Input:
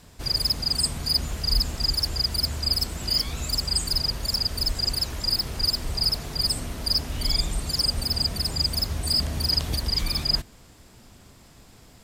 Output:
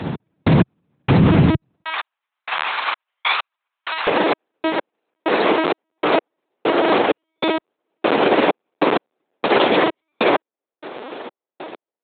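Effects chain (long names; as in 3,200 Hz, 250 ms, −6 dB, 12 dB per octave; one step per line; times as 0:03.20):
dynamic equaliser 2,400 Hz, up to +3 dB, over −50 dBFS, Q 6.7
linear-prediction vocoder at 8 kHz pitch kept
gate pattern "x..x...xx" 97 BPM −60 dB
high-pass filter 140 Hz 24 dB per octave, from 0:01.84 970 Hz, from 0:04.07 390 Hz
spectral tilt −3.5 dB per octave
boost into a limiter +28.5 dB
level −4 dB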